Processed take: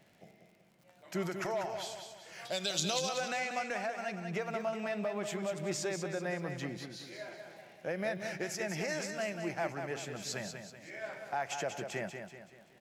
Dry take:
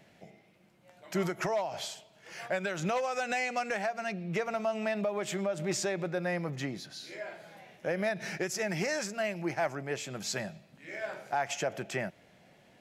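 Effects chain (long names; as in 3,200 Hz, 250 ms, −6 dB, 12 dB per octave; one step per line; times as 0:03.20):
0:02.45–0:03.09: high shelf with overshoot 2,700 Hz +12.5 dB, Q 3
surface crackle 54 per second −48 dBFS
repeating echo 190 ms, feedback 44%, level −7 dB
level −4.5 dB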